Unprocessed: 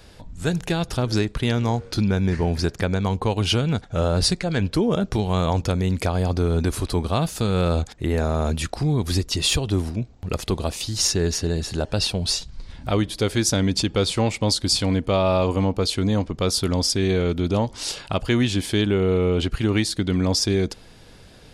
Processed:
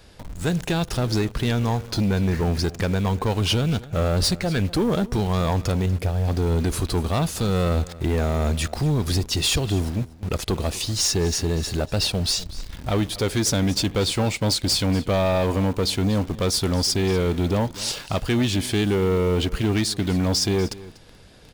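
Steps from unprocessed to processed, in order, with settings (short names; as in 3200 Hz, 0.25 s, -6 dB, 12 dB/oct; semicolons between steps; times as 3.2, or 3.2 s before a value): 5.86–6.28 graphic EQ 125/250/1000/2000/4000/8000 Hz +4/-9/-11/-5/-6/-12 dB; in parallel at -3.5 dB: bit-crush 6-bit; on the sum: soft clip -14 dBFS, distortion -14 dB; echo 0.242 s -18.5 dB; gain -2 dB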